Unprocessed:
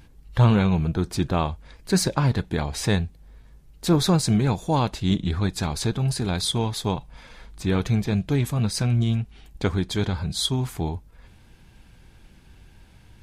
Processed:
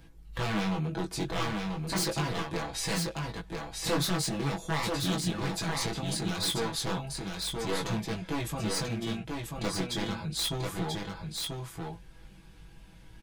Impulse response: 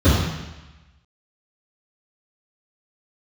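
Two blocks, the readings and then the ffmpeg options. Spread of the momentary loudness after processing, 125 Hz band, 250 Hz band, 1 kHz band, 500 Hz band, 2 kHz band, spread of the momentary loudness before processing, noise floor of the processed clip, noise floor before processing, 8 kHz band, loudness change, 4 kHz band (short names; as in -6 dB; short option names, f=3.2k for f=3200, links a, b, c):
8 LU, -12.0 dB, -9.0 dB, -5.0 dB, -6.5 dB, -1.5 dB, 10 LU, -52 dBFS, -52 dBFS, -2.5 dB, -8.5 dB, -3.0 dB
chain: -filter_complex "[0:a]acrossover=split=220|2300[a][b][c];[a]acompressor=threshold=-33dB:ratio=5[d];[d][b][c]amix=inputs=3:normalize=0,aeval=exprs='0.0841*(abs(mod(val(0)/0.0841+3,4)-2)-1)':c=same,aecho=1:1:6.1:0.65,flanger=delay=17.5:depth=4.3:speed=0.37,aecho=1:1:988:0.631,volume=-1.5dB"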